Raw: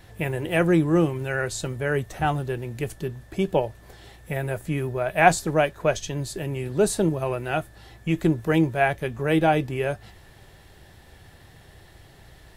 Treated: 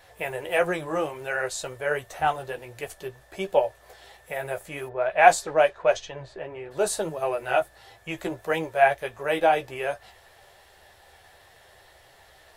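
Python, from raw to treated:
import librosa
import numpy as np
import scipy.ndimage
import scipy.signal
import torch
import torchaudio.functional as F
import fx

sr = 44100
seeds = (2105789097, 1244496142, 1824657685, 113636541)

y = fx.chorus_voices(x, sr, voices=4, hz=1.5, base_ms=13, depth_ms=3.0, mix_pct=35)
y = fx.low_shelf_res(y, sr, hz=380.0, db=-13.0, q=1.5)
y = fx.env_lowpass(y, sr, base_hz=1600.0, full_db=-14.5, at=(4.88, 6.7), fade=0.02)
y = y * librosa.db_to_amplitude(2.0)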